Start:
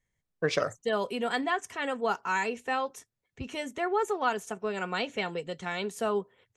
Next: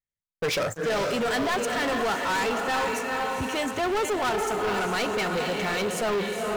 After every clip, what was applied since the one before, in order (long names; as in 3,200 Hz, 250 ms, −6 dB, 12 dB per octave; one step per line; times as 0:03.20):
feedback delay with all-pass diffusion 453 ms, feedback 48%, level −6 dB
leveller curve on the samples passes 5
level −8 dB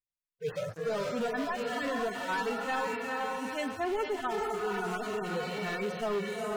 harmonic-percussive split with one part muted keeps harmonic
level −5 dB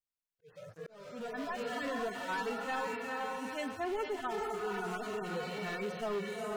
volume swells 712 ms
level −4 dB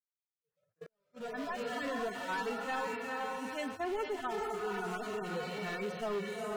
noise gate −43 dBFS, range −32 dB